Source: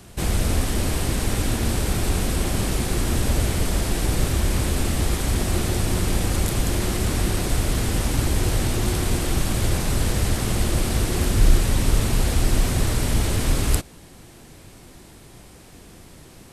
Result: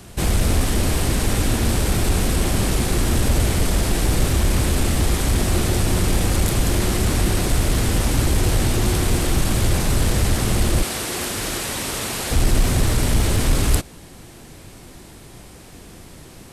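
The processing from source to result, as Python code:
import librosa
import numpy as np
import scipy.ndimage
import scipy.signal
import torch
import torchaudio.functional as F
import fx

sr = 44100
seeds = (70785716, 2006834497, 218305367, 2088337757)

p1 = fx.highpass(x, sr, hz=640.0, slope=6, at=(10.83, 12.31))
p2 = np.clip(10.0 ** (18.5 / 20.0) * p1, -1.0, 1.0) / 10.0 ** (18.5 / 20.0)
y = p1 + F.gain(torch.from_numpy(p2), -5.0).numpy()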